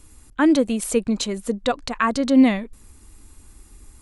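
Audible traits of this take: noise floor -50 dBFS; spectral tilt -4.5 dB/octave

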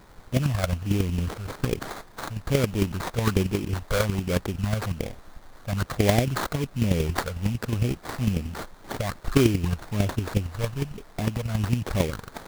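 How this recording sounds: chopped level 11 Hz, depth 60%, duty 10%; a quantiser's noise floor 10-bit, dither triangular; phasing stages 8, 1.2 Hz, lowest notch 290–3400 Hz; aliases and images of a low sample rate 2.8 kHz, jitter 20%

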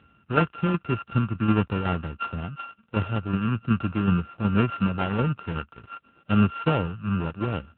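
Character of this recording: a buzz of ramps at a fixed pitch in blocks of 32 samples; tremolo saw down 2.7 Hz, depth 50%; AMR-NB

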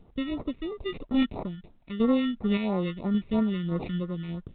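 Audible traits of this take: aliases and images of a low sample rate 1.6 kHz, jitter 0%; random-step tremolo; phasing stages 2, 3 Hz, lowest notch 710–2800 Hz; µ-law

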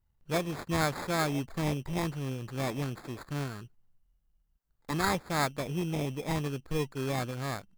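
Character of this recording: aliases and images of a low sample rate 2.9 kHz, jitter 0%; Nellymoser

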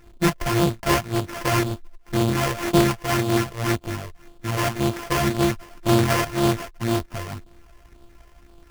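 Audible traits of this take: a buzz of ramps at a fixed pitch in blocks of 128 samples; phasing stages 12, 1.9 Hz, lowest notch 240–2000 Hz; aliases and images of a low sample rate 3.9 kHz, jitter 20%

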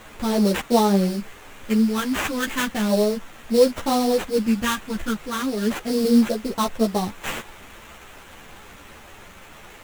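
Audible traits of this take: a quantiser's noise floor 8-bit, dither triangular; phasing stages 2, 0.35 Hz, lowest notch 580–2200 Hz; aliases and images of a low sample rate 4.9 kHz, jitter 20%; a shimmering, thickened sound

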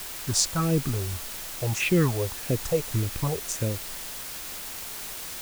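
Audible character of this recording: phasing stages 4, 1.7 Hz, lowest notch 240–1200 Hz; a quantiser's noise floor 6-bit, dither triangular

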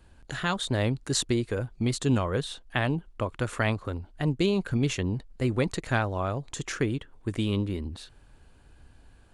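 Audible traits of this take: noise floor -56 dBFS; spectral tilt -5.5 dB/octave

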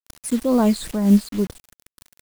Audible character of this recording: phasing stages 8, 2.2 Hz, lowest notch 740–2900 Hz; a quantiser's noise floor 6-bit, dither none; random flutter of the level

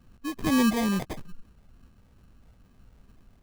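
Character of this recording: phasing stages 12, 2.3 Hz, lowest notch 420–1000 Hz; aliases and images of a low sample rate 1.4 kHz, jitter 0%

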